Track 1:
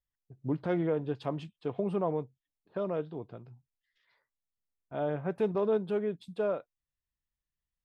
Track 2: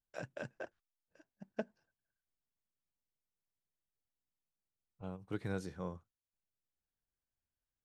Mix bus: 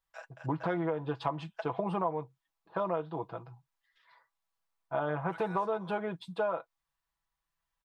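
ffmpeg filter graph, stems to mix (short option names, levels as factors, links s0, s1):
-filter_complex "[0:a]equalizer=f=250:t=o:w=1:g=-5,equalizer=f=500:t=o:w=1:g=-5,equalizer=f=1000:t=o:w=1:g=8,equalizer=f=4000:t=o:w=1:g=3,volume=0.891[s0];[1:a]highpass=f=770:w=0.5412,highpass=f=770:w=1.3066,tremolo=f=1.3:d=0.64,volume=0.794[s1];[s0][s1]amix=inputs=2:normalize=0,equalizer=f=750:t=o:w=2.8:g=8.5,aecho=1:1:6.1:0.64,acompressor=threshold=0.0398:ratio=6"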